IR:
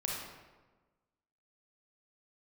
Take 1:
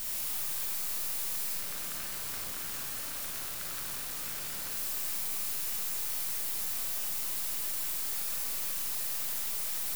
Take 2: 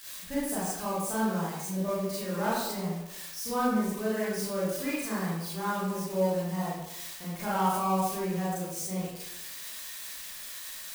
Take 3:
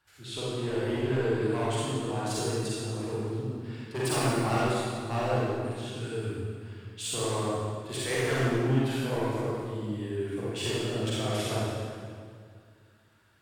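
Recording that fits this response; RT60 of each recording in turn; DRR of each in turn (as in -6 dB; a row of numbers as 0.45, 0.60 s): 1; 1.3, 0.85, 2.0 s; -3.0, -9.5, -9.0 dB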